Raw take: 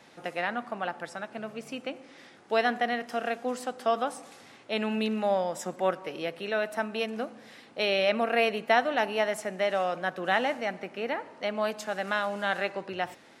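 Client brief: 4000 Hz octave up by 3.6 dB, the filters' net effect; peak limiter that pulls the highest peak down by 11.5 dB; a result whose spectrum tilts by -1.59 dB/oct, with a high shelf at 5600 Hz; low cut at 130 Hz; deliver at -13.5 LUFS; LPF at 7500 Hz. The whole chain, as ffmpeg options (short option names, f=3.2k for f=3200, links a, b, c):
-af "highpass=130,lowpass=7.5k,equalizer=f=4k:t=o:g=6.5,highshelf=f=5.6k:g=-3.5,volume=19dB,alimiter=limit=-0.5dB:level=0:latency=1"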